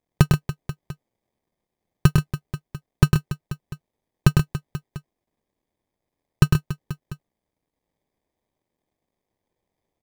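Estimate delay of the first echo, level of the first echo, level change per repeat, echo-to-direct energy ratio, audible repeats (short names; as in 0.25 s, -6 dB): 0.103 s, -4.0 dB, no steady repeat, -2.0 dB, 4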